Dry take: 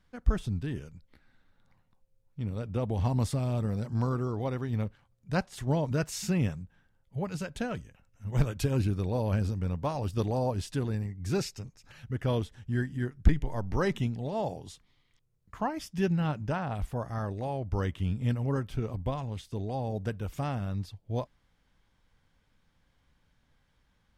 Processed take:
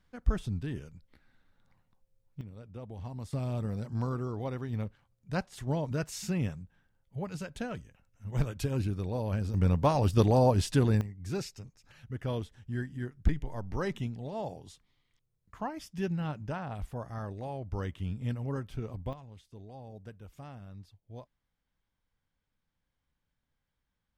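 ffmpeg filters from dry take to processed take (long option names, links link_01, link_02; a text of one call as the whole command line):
ffmpeg -i in.wav -af "asetnsamples=nb_out_samples=441:pad=0,asendcmd='2.41 volume volume -13dB;3.33 volume volume -3.5dB;9.54 volume volume 6dB;11.01 volume volume -5dB;19.13 volume volume -14dB',volume=-2dB" out.wav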